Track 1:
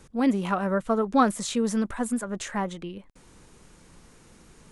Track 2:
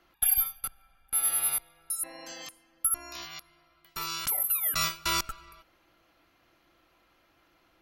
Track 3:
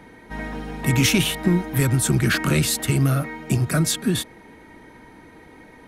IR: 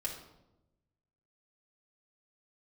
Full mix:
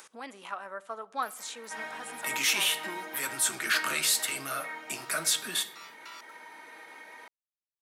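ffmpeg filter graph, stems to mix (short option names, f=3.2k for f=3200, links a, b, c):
-filter_complex "[0:a]volume=-8.5dB,asplit=2[a][b];[b]volume=-15dB[c];[1:a]lowpass=f=2.8k:p=1,aeval=exprs='val(0)*gte(abs(val(0)),0.00631)':c=same,adelay=1000,volume=-16.5dB[d];[2:a]alimiter=limit=-13dB:level=0:latency=1:release=12,flanger=delay=9.7:depth=4.4:regen=-54:speed=0.98:shape=sinusoidal,adelay=1400,volume=0dB,asplit=2[e][f];[f]volume=-6.5dB[g];[3:a]atrim=start_sample=2205[h];[c][g]amix=inputs=2:normalize=0[i];[i][h]afir=irnorm=-1:irlink=0[j];[a][d][e][j]amix=inputs=4:normalize=0,highpass=860,acompressor=mode=upward:threshold=-41dB:ratio=2.5"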